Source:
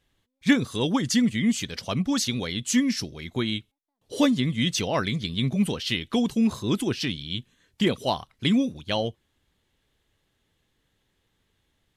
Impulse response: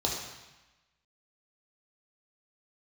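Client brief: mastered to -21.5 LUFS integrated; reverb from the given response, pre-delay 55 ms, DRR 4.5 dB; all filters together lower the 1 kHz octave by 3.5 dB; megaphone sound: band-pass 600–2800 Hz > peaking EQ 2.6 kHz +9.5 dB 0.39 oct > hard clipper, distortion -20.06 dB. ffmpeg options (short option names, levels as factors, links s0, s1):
-filter_complex "[0:a]equalizer=f=1000:t=o:g=-3.5,asplit=2[s0][s1];[1:a]atrim=start_sample=2205,adelay=55[s2];[s1][s2]afir=irnorm=-1:irlink=0,volume=0.237[s3];[s0][s3]amix=inputs=2:normalize=0,highpass=600,lowpass=2800,equalizer=f=2600:t=o:w=0.39:g=9.5,asoftclip=type=hard:threshold=0.133,volume=2.82"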